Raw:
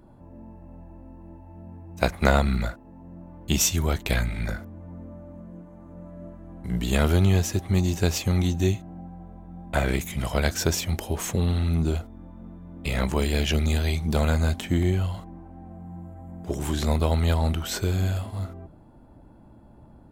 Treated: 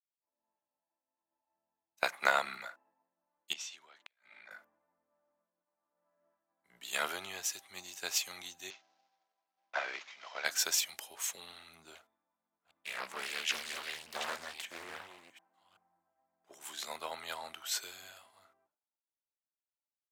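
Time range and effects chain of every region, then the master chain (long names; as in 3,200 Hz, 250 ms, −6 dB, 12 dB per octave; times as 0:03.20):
0:03.53–0:04.51: band-pass filter 180–4,200 Hz + downward compressor 20 to 1, threshold −32 dBFS + gate with flip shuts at −22 dBFS, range −34 dB
0:08.70–0:10.45: variable-slope delta modulation 32 kbit/s + high-pass filter 320 Hz
0:11.95–0:16.10: delay that plays each chunk backwards 382 ms, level −6 dB + highs frequency-modulated by the lows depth 0.86 ms
whole clip: high-pass filter 1,100 Hz 12 dB per octave; downward expander −59 dBFS; multiband upward and downward expander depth 70%; level −7 dB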